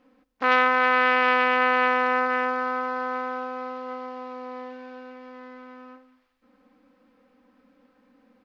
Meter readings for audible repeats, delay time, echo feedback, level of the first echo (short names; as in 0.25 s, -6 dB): 2, 0.198 s, 31%, -20.0 dB